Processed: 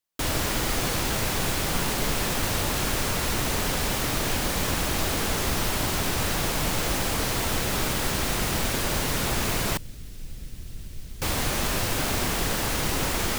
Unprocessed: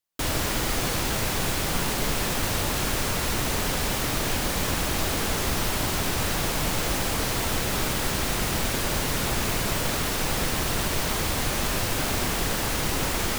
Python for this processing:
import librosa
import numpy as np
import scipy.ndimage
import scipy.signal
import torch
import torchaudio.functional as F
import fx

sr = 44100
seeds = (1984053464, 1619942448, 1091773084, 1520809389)

y = fx.tone_stack(x, sr, knobs='10-0-1', at=(9.77, 11.22))